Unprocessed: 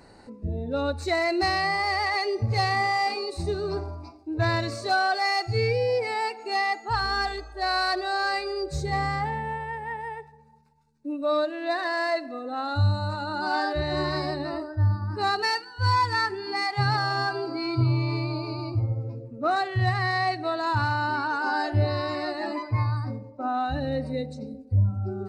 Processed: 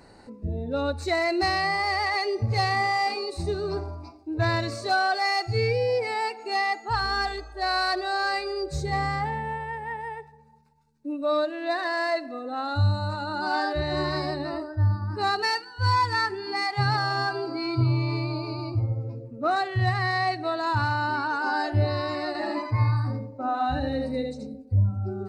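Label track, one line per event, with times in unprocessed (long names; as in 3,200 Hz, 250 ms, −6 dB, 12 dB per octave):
22.270000	24.470000	single-tap delay 78 ms −4.5 dB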